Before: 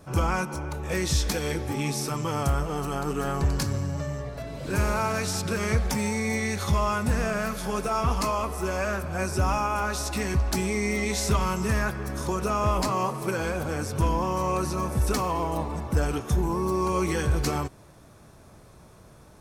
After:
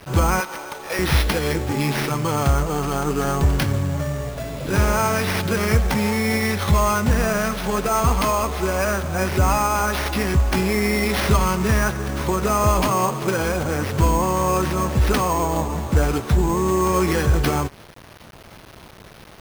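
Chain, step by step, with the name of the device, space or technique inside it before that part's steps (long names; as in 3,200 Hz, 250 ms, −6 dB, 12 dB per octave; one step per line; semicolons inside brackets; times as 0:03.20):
0:00.40–0:00.99: high-pass filter 550 Hz 12 dB per octave
early 8-bit sampler (sample-rate reduction 7,500 Hz, jitter 0%; bit reduction 8 bits)
level +6.5 dB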